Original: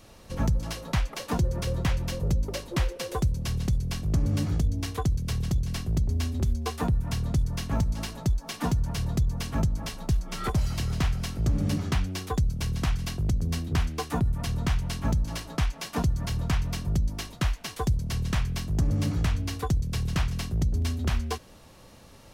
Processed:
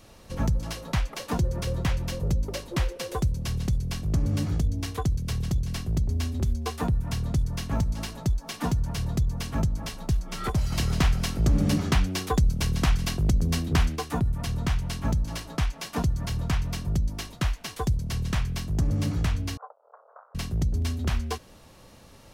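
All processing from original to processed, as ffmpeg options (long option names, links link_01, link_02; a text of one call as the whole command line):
ffmpeg -i in.wav -filter_complex "[0:a]asettb=1/sr,asplit=3[link_01][link_02][link_03];[link_01]atrim=end=10.724[link_04];[link_02]atrim=start=10.72:end=13.96,asetpts=PTS-STARTPTS,afade=type=in:duration=0.004:curve=qsin,afade=type=out:start_time=3.236:duration=0.004:curve=qsin,equalizer=frequency=100:width_type=o:width=0.69:gain=-5.5,acontrast=27[link_05];[link_03]atrim=start=13.956[link_06];[link_04][link_05]acrossfade=duration=0.004:curve1=hsin:curve2=qsin[link_07];[link_07][link_06]acrossfade=duration=0.004:curve1=qsin:curve2=hsin,asettb=1/sr,asplit=3[link_08][link_09][link_10];[link_08]atrim=end=19.574[link_11];[link_09]atrim=start=19.57:end=20.35,asetpts=PTS-STARTPTS,afade=type=in:duration=0.004:curve=qsin,afade=type=out:start_time=0.776:duration=0.004:curve=qsin,acompressor=threshold=-27dB:ratio=6:attack=3.2:release=140:knee=1:detection=peak,asoftclip=type=hard:threshold=-32dB,asuperpass=centerf=850:order=12:qfactor=0.97[link_12];[link_10]atrim=start=20.346[link_13];[link_11][link_12]acrossfade=duration=0.004:curve1=hsin:curve2=qsin[link_14];[link_14][link_13]acrossfade=duration=0.004:curve1=qsin:curve2=hsin" out.wav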